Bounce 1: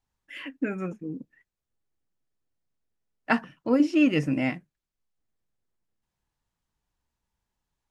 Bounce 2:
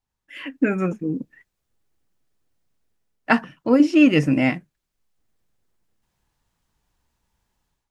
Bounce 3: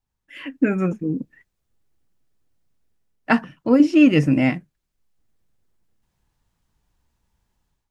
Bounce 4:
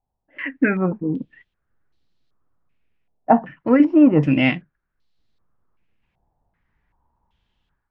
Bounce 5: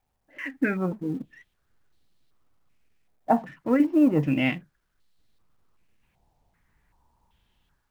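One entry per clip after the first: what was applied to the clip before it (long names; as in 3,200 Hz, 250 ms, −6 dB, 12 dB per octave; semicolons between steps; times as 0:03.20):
automatic gain control gain up to 12 dB; level −2 dB
low-shelf EQ 270 Hz +5.5 dB; level −1.5 dB
low-pass on a step sequencer 2.6 Hz 740–4,100 Hz
mu-law and A-law mismatch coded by mu; level −7 dB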